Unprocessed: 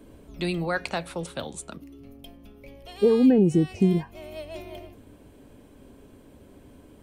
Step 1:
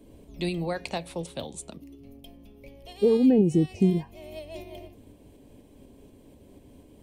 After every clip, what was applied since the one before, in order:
parametric band 1,400 Hz −13 dB 0.61 octaves
shaped tremolo saw up 4.1 Hz, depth 30%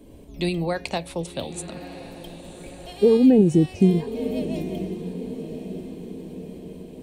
feedback delay with all-pass diffusion 1,083 ms, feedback 54%, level −12 dB
level +4.5 dB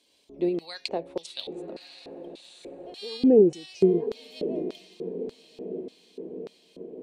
parametric band 120 Hz −5 dB 2.1 octaves
auto-filter band-pass square 1.7 Hz 410–4,400 Hz
level +5.5 dB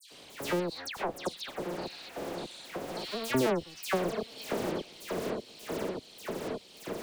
sub-harmonics by changed cycles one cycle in 2, muted
all-pass dispersion lows, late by 110 ms, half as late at 2,500 Hz
multiband upward and downward compressor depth 70%

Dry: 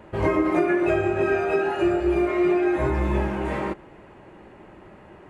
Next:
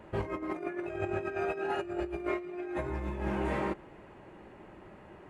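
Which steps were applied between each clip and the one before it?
compressor whose output falls as the input rises −25 dBFS, ratio −0.5
level −8.5 dB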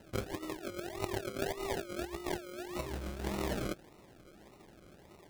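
harmonic generator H 3 −16 dB, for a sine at −19.5 dBFS
sample-and-hold swept by an LFO 38×, swing 60% 1.7 Hz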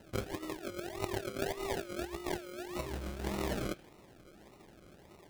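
on a send at −12 dB: resonant band-pass 2,700 Hz, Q 1.5 + convolution reverb, pre-delay 3 ms

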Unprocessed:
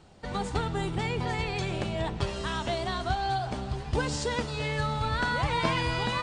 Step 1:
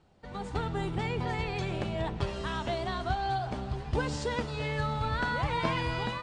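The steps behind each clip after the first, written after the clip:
high-shelf EQ 4,700 Hz −8.5 dB
automatic gain control gain up to 7.5 dB
level −9 dB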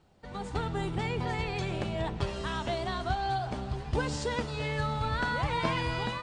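high-shelf EQ 6,400 Hz +4.5 dB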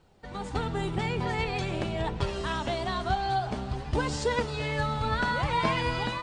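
flanger 0.46 Hz, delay 1.9 ms, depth 3.7 ms, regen +67%
level +7 dB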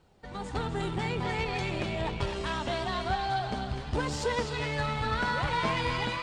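feedback echo with a band-pass in the loop 252 ms, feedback 48%, band-pass 2,700 Hz, level −3.5 dB
tube saturation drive 20 dB, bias 0.4

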